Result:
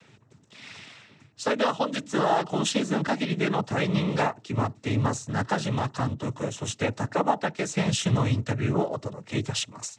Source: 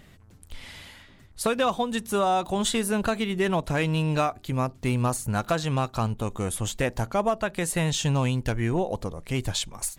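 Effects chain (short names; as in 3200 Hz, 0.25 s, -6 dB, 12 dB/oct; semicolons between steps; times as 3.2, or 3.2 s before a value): noise vocoder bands 12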